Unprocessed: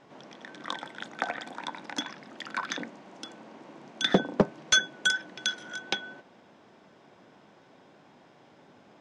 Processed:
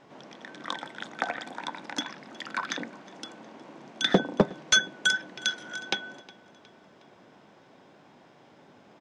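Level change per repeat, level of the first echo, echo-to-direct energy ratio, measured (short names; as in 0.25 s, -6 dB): -6.5 dB, -22.0 dB, -21.0 dB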